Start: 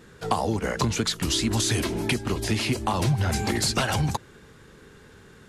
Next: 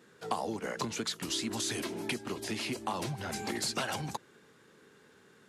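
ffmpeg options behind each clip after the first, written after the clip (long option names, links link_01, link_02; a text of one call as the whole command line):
ffmpeg -i in.wav -af "highpass=200,volume=-8.5dB" out.wav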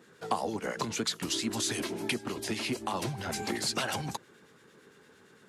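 ffmpeg -i in.wav -filter_complex "[0:a]acrossover=split=1700[link_01][link_02];[link_01]aeval=exprs='val(0)*(1-0.5/2+0.5/2*cos(2*PI*8.8*n/s))':channel_layout=same[link_03];[link_02]aeval=exprs='val(0)*(1-0.5/2-0.5/2*cos(2*PI*8.8*n/s))':channel_layout=same[link_04];[link_03][link_04]amix=inputs=2:normalize=0,volume=4.5dB" out.wav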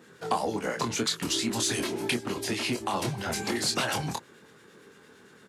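ffmpeg -i in.wav -filter_complex "[0:a]asplit=2[link_01][link_02];[link_02]asoftclip=type=tanh:threshold=-24.5dB,volume=-7dB[link_03];[link_01][link_03]amix=inputs=2:normalize=0,asplit=2[link_04][link_05];[link_05]adelay=25,volume=-6dB[link_06];[link_04][link_06]amix=inputs=2:normalize=0" out.wav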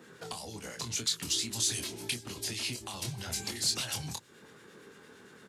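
ffmpeg -i in.wav -filter_complex "[0:a]acrossover=split=120|3000[link_01][link_02][link_03];[link_02]acompressor=threshold=-44dB:ratio=6[link_04];[link_01][link_04][link_03]amix=inputs=3:normalize=0" out.wav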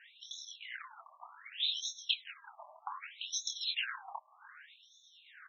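ffmpeg -i in.wav -af "asuperstop=centerf=4700:order=12:qfactor=3.5,afftfilt=real='re*between(b*sr/1024,830*pow(4800/830,0.5+0.5*sin(2*PI*0.65*pts/sr))/1.41,830*pow(4800/830,0.5+0.5*sin(2*PI*0.65*pts/sr))*1.41)':imag='im*between(b*sr/1024,830*pow(4800/830,0.5+0.5*sin(2*PI*0.65*pts/sr))/1.41,830*pow(4800/830,0.5+0.5*sin(2*PI*0.65*pts/sr))*1.41)':win_size=1024:overlap=0.75,volume=6dB" out.wav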